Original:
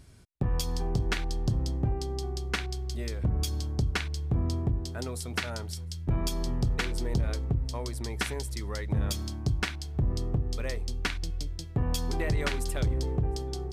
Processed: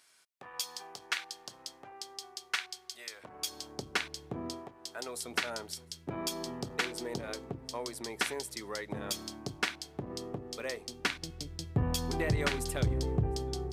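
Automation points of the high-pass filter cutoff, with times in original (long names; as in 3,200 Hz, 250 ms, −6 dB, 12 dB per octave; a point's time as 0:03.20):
0:03.07 1,100 Hz
0:03.96 310 Hz
0:04.47 310 Hz
0:04.74 950 Hz
0:05.30 300 Hz
0:10.85 300 Hz
0:11.71 74 Hz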